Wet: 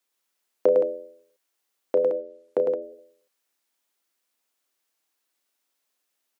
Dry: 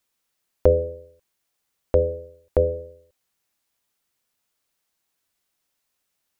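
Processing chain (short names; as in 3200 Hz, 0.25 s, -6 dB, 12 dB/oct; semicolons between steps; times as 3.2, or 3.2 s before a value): HPF 240 Hz 24 dB/oct; 2.02–2.82 treble ducked by the level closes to 600 Hz, closed at -20.5 dBFS; loudspeakers at several distances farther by 11 m -11 dB, 36 m -4 dB, 58 m -8 dB; gain -3 dB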